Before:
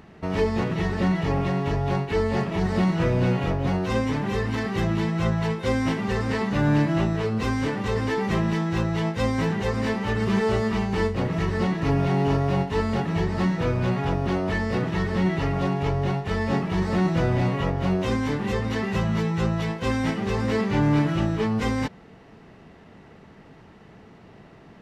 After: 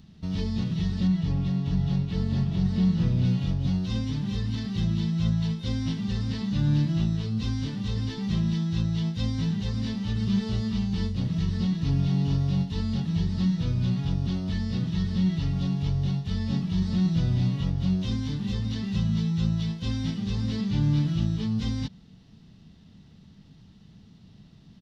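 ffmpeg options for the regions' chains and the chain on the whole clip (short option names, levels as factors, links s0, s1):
-filter_complex "[0:a]asettb=1/sr,asplit=3[s0][s1][s2];[s0]atrim=end=1.074[s3];[s1]atrim=start=1.07:end=3.25,asetpts=PTS-STARTPTS,afade=t=in:d=0.004:c=qsin,afade=t=out:st=2.176:d=0.004:c=qsin,highshelf=f=3900:g=-8,aecho=1:1:648:0.531,atrim=end_sample=96138[s4];[s2]atrim=start=3.246[s5];[s3][s4]acrossfade=d=0.004:c1=hsin:c2=qsin[s6];[s6][s5]acrossfade=d=0.004:c1=qsin:c2=hsin,acrossover=split=5700[s7][s8];[s8]acompressor=threshold=0.00126:ratio=4:attack=1:release=60[s9];[s7][s9]amix=inputs=2:normalize=0,firequalizer=gain_entry='entry(190,0);entry(380,-17);entry(620,-18);entry(2200,-15);entry(3500,2);entry(5500,1);entry(7800,-6)':delay=0.05:min_phase=1"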